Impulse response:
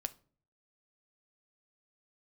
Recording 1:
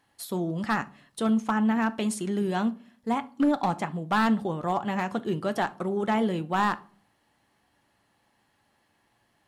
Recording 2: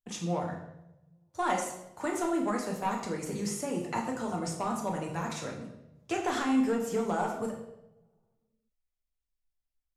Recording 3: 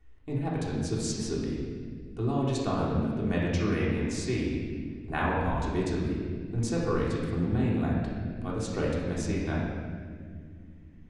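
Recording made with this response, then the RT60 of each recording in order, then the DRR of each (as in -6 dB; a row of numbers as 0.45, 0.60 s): 1; 0.45, 0.90, 2.0 s; 10.0, -1.0, -6.0 dB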